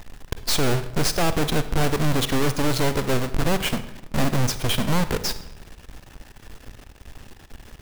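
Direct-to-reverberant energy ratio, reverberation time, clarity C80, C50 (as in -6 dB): 11.5 dB, 0.95 s, 15.5 dB, 12.5 dB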